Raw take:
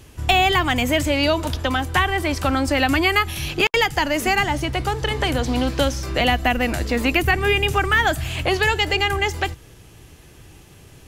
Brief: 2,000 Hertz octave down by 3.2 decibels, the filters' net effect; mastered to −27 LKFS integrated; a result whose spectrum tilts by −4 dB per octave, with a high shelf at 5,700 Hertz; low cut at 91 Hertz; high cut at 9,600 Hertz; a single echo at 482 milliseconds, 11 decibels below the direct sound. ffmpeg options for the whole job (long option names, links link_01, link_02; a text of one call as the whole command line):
ffmpeg -i in.wav -af "highpass=91,lowpass=9600,equalizer=frequency=2000:width_type=o:gain=-4.5,highshelf=frequency=5700:gain=4.5,aecho=1:1:482:0.282,volume=-6dB" out.wav